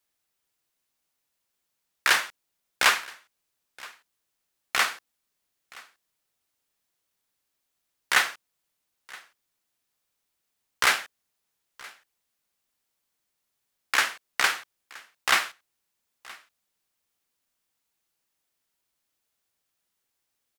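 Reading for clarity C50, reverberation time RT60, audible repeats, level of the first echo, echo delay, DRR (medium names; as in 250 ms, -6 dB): no reverb, no reverb, 1, -22.5 dB, 972 ms, no reverb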